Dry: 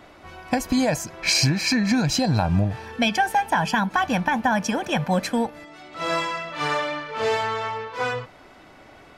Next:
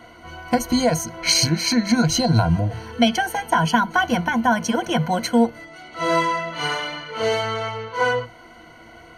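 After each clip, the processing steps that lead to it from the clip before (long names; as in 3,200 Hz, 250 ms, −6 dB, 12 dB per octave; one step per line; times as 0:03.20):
EQ curve with evenly spaced ripples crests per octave 1.9, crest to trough 16 dB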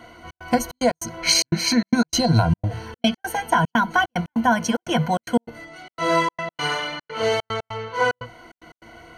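gate pattern "xxx.xxx.x.x" 148 BPM −60 dB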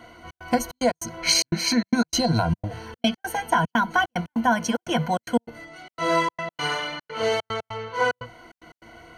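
dynamic equaliser 110 Hz, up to −6 dB, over −37 dBFS, Q 1.8
level −2 dB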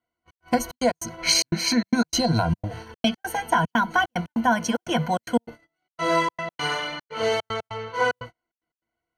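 noise gate −37 dBFS, range −38 dB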